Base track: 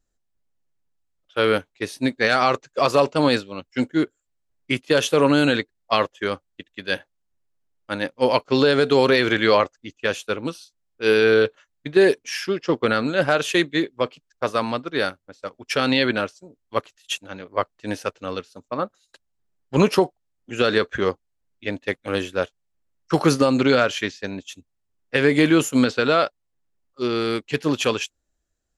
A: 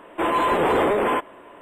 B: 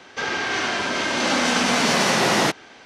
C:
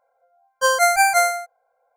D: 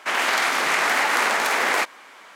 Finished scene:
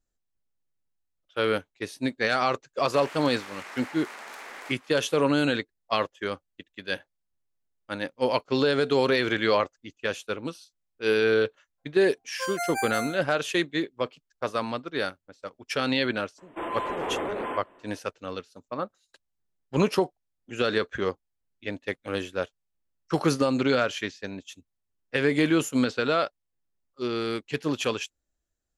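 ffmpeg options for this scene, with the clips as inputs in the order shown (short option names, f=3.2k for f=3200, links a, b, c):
-filter_complex "[0:a]volume=-6dB[a];[4:a]acompressor=threshold=-26dB:ratio=6:attack=3.2:release=140:knee=1:detection=peak[b];[1:a]highshelf=f=9.2k:g=-10.5[c];[b]atrim=end=2.35,asetpts=PTS-STARTPTS,volume=-12.5dB,afade=t=in:d=0.004:c=hsin,afade=t=out:st=2.346:d=0.004:c=hsin,adelay=2880[d];[3:a]atrim=end=1.96,asetpts=PTS-STARTPTS,volume=-15dB,afade=t=in:d=0.004:c=hsin,afade=t=out:st=1.956:d=0.004:c=hsin,adelay=519498S[e];[c]atrim=end=1.61,asetpts=PTS-STARTPTS,volume=-11dB,afade=t=in:d=0.004:c=hsin,afade=t=out:st=1.606:d=0.004:c=hsin,adelay=16380[f];[a][d][e][f]amix=inputs=4:normalize=0"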